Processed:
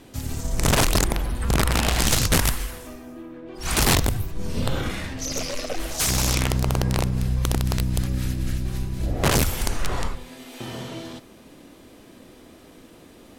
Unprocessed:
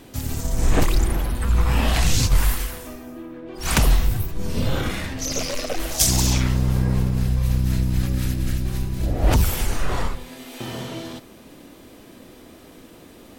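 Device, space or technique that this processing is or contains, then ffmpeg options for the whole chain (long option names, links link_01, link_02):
overflowing digital effects unit: -af "aeval=exprs='(mod(3.76*val(0)+1,2)-1)/3.76':channel_layout=same,lowpass=13000,volume=-2.5dB"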